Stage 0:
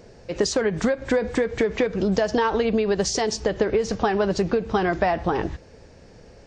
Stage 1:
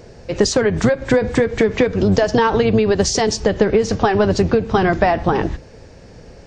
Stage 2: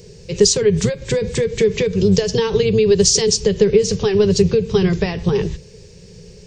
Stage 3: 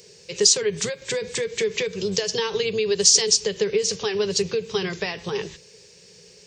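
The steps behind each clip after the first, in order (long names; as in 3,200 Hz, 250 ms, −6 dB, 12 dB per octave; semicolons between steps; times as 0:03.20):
sub-octave generator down 1 octave, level −4 dB; level +6 dB
drawn EQ curve 100 Hz 0 dB, 180 Hz +8 dB, 280 Hz −16 dB, 410 Hz +7 dB, 700 Hz −16 dB, 1,000 Hz −8 dB, 1,400 Hz −11 dB, 2,600 Hz +3 dB, 7,400 Hz +10 dB; level −2 dB
high-pass filter 1,100 Hz 6 dB per octave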